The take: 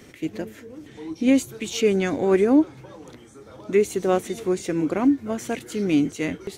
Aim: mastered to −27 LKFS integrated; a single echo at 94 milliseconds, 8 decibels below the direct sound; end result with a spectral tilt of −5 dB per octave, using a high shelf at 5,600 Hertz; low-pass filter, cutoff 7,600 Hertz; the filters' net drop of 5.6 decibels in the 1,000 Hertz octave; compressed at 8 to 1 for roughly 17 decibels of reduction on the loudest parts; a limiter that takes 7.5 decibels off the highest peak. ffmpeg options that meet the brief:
ffmpeg -i in.wav -af "lowpass=7600,equalizer=frequency=1000:width_type=o:gain=-8.5,highshelf=frequency=5600:gain=-3.5,acompressor=threshold=-32dB:ratio=8,alimiter=level_in=6dB:limit=-24dB:level=0:latency=1,volume=-6dB,aecho=1:1:94:0.398,volume=12dB" out.wav

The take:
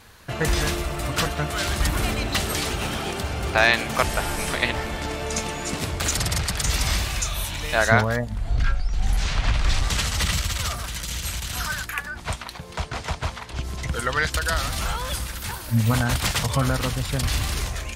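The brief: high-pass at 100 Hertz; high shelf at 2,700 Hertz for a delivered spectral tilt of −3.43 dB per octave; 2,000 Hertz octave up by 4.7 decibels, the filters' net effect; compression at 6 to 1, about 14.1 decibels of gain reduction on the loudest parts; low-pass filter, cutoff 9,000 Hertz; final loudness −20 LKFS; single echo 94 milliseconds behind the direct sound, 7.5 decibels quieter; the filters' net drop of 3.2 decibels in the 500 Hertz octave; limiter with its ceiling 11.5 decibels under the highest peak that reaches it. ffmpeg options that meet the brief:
ffmpeg -i in.wav -af "highpass=100,lowpass=9000,equalizer=frequency=500:width_type=o:gain=-5,equalizer=frequency=2000:width_type=o:gain=3.5,highshelf=frequency=2700:gain=7,acompressor=threshold=-25dB:ratio=6,alimiter=limit=-19.5dB:level=0:latency=1,aecho=1:1:94:0.422,volume=8.5dB" out.wav

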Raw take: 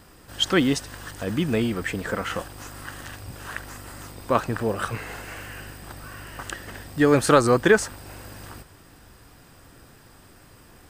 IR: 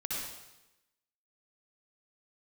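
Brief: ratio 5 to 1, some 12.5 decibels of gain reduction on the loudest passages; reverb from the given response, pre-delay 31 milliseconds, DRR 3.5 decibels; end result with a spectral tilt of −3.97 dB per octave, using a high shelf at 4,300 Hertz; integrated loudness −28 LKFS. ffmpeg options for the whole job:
-filter_complex "[0:a]highshelf=frequency=4300:gain=7.5,acompressor=threshold=-25dB:ratio=5,asplit=2[link_01][link_02];[1:a]atrim=start_sample=2205,adelay=31[link_03];[link_02][link_03]afir=irnorm=-1:irlink=0,volume=-7dB[link_04];[link_01][link_04]amix=inputs=2:normalize=0,volume=2dB"

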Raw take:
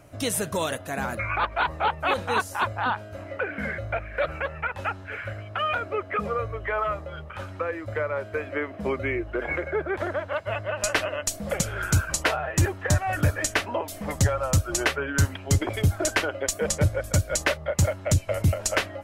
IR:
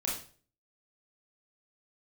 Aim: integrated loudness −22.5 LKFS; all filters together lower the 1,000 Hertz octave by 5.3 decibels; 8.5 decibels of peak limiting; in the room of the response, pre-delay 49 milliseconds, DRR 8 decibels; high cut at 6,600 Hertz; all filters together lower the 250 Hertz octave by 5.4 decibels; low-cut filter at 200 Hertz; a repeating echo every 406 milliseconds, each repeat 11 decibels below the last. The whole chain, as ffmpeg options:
-filter_complex "[0:a]highpass=200,lowpass=6600,equalizer=frequency=250:width_type=o:gain=-4.5,equalizer=frequency=1000:width_type=o:gain=-7,alimiter=limit=-21dB:level=0:latency=1,aecho=1:1:406|812|1218:0.282|0.0789|0.0221,asplit=2[link_01][link_02];[1:a]atrim=start_sample=2205,adelay=49[link_03];[link_02][link_03]afir=irnorm=-1:irlink=0,volume=-12.5dB[link_04];[link_01][link_04]amix=inputs=2:normalize=0,volume=9dB"

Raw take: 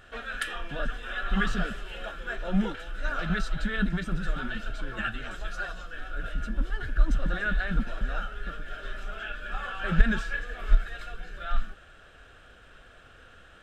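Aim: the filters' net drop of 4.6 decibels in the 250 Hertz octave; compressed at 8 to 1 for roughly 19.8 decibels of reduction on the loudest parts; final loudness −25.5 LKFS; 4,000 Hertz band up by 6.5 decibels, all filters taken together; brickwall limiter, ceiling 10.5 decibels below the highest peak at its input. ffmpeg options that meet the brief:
ffmpeg -i in.wav -af "equalizer=frequency=250:width_type=o:gain=-7,equalizer=frequency=4000:width_type=o:gain=8.5,acompressor=threshold=-33dB:ratio=8,volume=17dB,alimiter=limit=-14dB:level=0:latency=1" out.wav

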